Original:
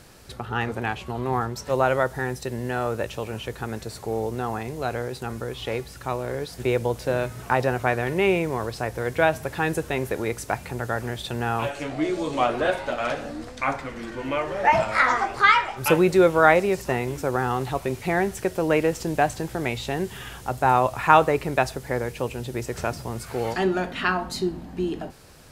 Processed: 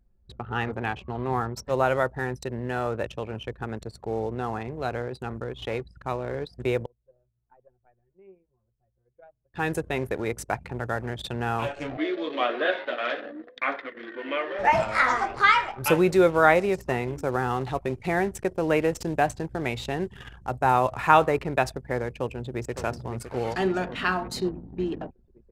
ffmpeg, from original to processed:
-filter_complex "[0:a]asettb=1/sr,asplit=3[a][b][c];[a]atrim=end=11.974[d];[b]atrim=start=11.97:end=14.59,asetpts=PTS-STARTPTS,afade=t=in:d=0.004:c=qsin,afade=t=out:st=2.616:d=0.004:c=qsin,highpass=f=280:w=0.5412,highpass=f=280:w=1.3066,equalizer=f=860:t=q:w=4:g=-8,equalizer=f=1.8k:t=q:w=4:g=7,equalizer=f=3.4k:t=q:w=4:g=6,lowpass=f=4.3k:w=0.5412,lowpass=f=4.3k:w=1.3066[e];[c]atrim=start=14.586[f];[d][e]acrossfade=d=0.004:c1=hsin:c2=qsin[g];[g][f]acrossfade=d=0.004:c1=qsin:c2=hsin,asplit=2[h][i];[i]afade=t=in:st=22.11:d=0.01,afade=t=out:st=22.76:d=0.01,aecho=0:1:560|1120|1680|2240|2800|3360|3920|4480|5040|5600|6160|6720:0.334965|0.267972|0.214378|0.171502|0.137202|0.109761|0.0878092|0.0702473|0.0561979|0.0449583|0.0359666|0.0287733[j];[h][j]amix=inputs=2:normalize=0,asplit=3[k][l][m];[k]atrim=end=6.86,asetpts=PTS-STARTPTS,afade=t=out:st=6.47:d=0.39:c=log:silence=0.0668344[n];[l]atrim=start=6.86:end=9.54,asetpts=PTS-STARTPTS,volume=-23.5dB[o];[m]atrim=start=9.54,asetpts=PTS-STARTPTS,afade=t=in:d=0.39:c=log:silence=0.0668344[p];[n][o][p]concat=n=3:v=0:a=1,anlmdn=3.98,volume=-2dB"

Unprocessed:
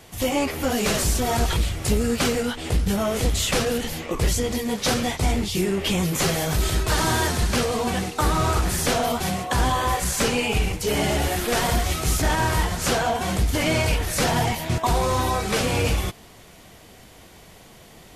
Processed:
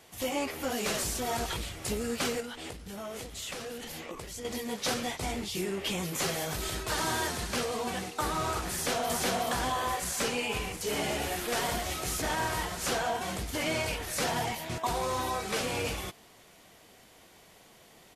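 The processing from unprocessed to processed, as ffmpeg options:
-filter_complex "[0:a]asettb=1/sr,asplit=3[a][b][c];[a]atrim=end=2.404[d];[b]atrim=start=2.4:end=4.45,asetpts=PTS-STARTPTS,afade=t=in:d=0.004:c=qsin,afade=t=out:st=2.046:d=0.004:c=qsin,acompressor=threshold=-26dB:ratio=12:attack=3.2:release=140:knee=1:detection=peak[e];[c]atrim=start=4.446[f];[d][e]acrossfade=d=0.004:c1=hsin:c2=qsin[g];[g][f]acrossfade=d=0.004:c1=qsin:c2=hsin,asplit=2[h][i];[i]afade=t=in:st=8.72:d=0.01,afade=t=out:st=9.21:d=0.01,aecho=0:1:370|740|1110|1480:0.944061|0.283218|0.0849655|0.0254896[j];[h][j]amix=inputs=2:normalize=0,asplit=3[k][l][m];[k]afade=t=out:st=10.49:d=0.02[n];[l]aecho=1:1:718:0.282,afade=t=in:st=10.49:d=0.02,afade=t=out:st=13.19:d=0.02[o];[m]afade=t=in:st=13.19:d=0.02[p];[n][o][p]amix=inputs=3:normalize=0,lowshelf=f=160:g=-11.5,volume=-7.5dB"

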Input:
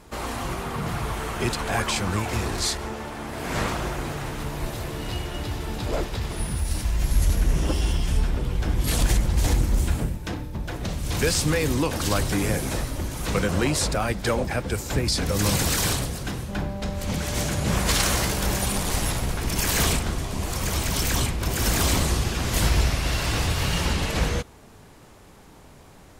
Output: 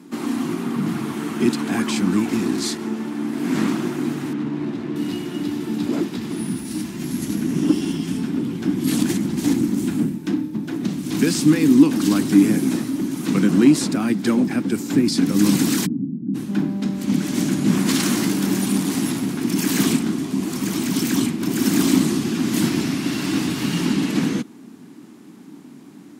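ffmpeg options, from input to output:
-filter_complex "[0:a]asettb=1/sr,asplit=3[a][b][c];[a]atrim=end=4.334[d];[b]atrim=start=4.33:end=4.96,asetpts=PTS-STARTPTS,afade=t=in:d=0.004:c=qsin,afade=t=out:st=0.626:d=0.004:c=qsin,adynamicsmooth=sensitivity=5:basefreq=2.3k[e];[c]atrim=start=4.956[f];[d][e]acrossfade=d=0.004:c1=hsin:c2=qsin[g];[g][f]acrossfade=d=0.004:c1=qsin:c2=hsin,asplit=3[h][i][j];[h]afade=t=out:st=15.85:d=0.02[k];[i]asuperpass=centerf=190:order=4:qfactor=1.3,afade=t=in:st=15.85:d=0.02,afade=t=out:st=16.34:d=0.02[l];[j]afade=t=in:st=16.34:d=0.02[m];[k][l][m]amix=inputs=3:normalize=0,highpass=f=190:w=0.5412,highpass=f=190:w=1.3066,lowshelf=f=390:t=q:w=3:g=10.5,volume=-1dB"

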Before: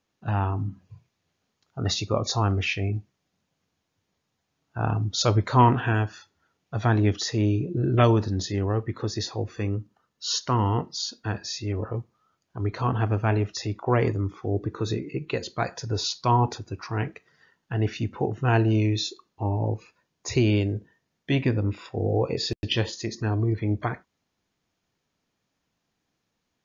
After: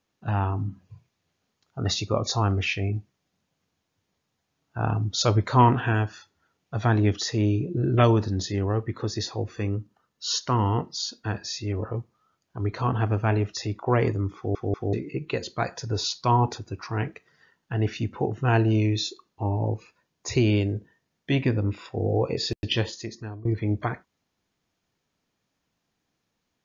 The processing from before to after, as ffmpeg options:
-filter_complex "[0:a]asplit=5[a][b][c][d][e];[a]atrim=end=14.552[f];[b]atrim=start=14.358:end=14.552[g];[c]atrim=start=14.358:end=14.552[h];[d]atrim=start=14.928:end=23.45,asetpts=PTS-STARTPTS,afade=t=out:st=7.852:d=0.67:silence=0.0841395[i];[e]atrim=start=23.45,asetpts=PTS-STARTPTS,afade=t=in:d=0.004:c=hsin:silence=0.0841395[j];[f][g]acrossfade=d=0.004:c1=hsin:c2=hsin[k];[k][h]acrossfade=d=0.004:c1=hsin:c2=hsin[l];[i][j]concat=n=2:v=0:a=1[m];[l][m]acrossfade=d=0.004:c1=hsin:c2=hsin"

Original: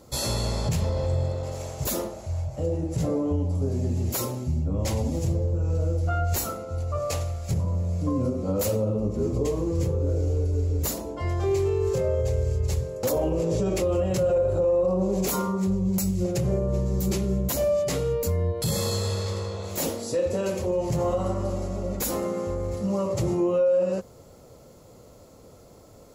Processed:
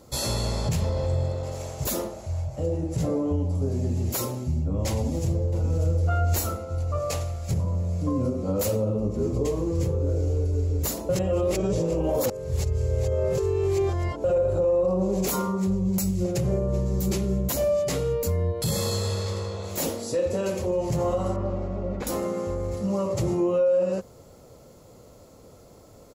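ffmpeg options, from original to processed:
-filter_complex "[0:a]asplit=2[a][b];[b]afade=t=in:st=4.93:d=0.01,afade=t=out:st=5.96:d=0.01,aecho=0:1:590|1180|1770|2360:0.375837|0.150335|0.060134|0.0240536[c];[a][c]amix=inputs=2:normalize=0,asettb=1/sr,asplit=3[d][e][f];[d]atrim=end=21.364[g];[e]atrim=start=21.36:end=22.07,asetpts=PTS-STARTPTS,afade=t=in:d=0.004:c=qsin,afade=t=out:st=0.706:d=0.004:c=qsin,lowpass=2.5k[h];[f]atrim=start=22.066[i];[g][h]acrossfade=d=0.004:c1=hsin:c2=qsin[j];[j][i]acrossfade=d=0.004:c1=qsin:c2=hsin,asplit=3[k][l][m];[k]atrim=end=11.092[n];[l]atrim=start=11.088:end=14.242,asetpts=PTS-STARTPTS,areverse[o];[m]atrim=start=14.238[p];[n][o]acrossfade=d=0.004:c1=hsin:c2=hsin[q];[q][p]acrossfade=d=0.004:c1=hsin:c2=hsin"

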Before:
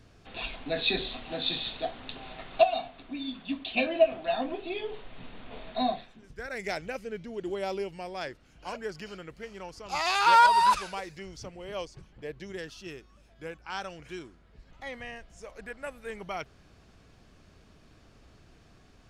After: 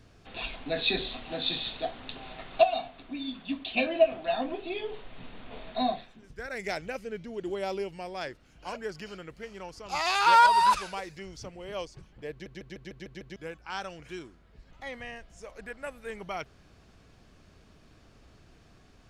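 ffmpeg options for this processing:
-filter_complex "[0:a]asplit=8[a][b][c][d][e][f][g][h];[a]atrim=end=12.462[i];[b]atrim=start=12.308:end=12.462[j];[c]atrim=start=12.308:end=12.462[k];[d]atrim=start=12.308:end=12.462[l];[e]atrim=start=12.308:end=12.462[m];[f]atrim=start=12.308:end=12.462[n];[g]atrim=start=12.308:end=12.462[o];[h]atrim=start=13.358[p];[i][j]acrossfade=d=0.004:c1=hsin:c2=hsin[q];[q][k]acrossfade=d=0.004:c1=hsin:c2=hsin[r];[r][l]acrossfade=d=0.004:c1=hsin:c2=hsin[s];[s][m]acrossfade=d=0.004:c1=hsin:c2=hsin[t];[t][n]acrossfade=d=0.004:c1=hsin:c2=hsin[u];[u][o]acrossfade=d=0.004:c1=hsin:c2=hsin[v];[v][p]acrossfade=d=0.004:c1=hsin:c2=hsin"

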